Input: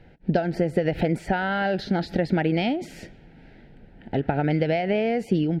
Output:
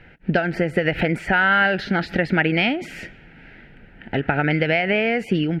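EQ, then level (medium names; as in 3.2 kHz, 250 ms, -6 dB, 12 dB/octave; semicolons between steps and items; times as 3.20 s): high-order bell 1.8 kHz +10.5 dB; +1.5 dB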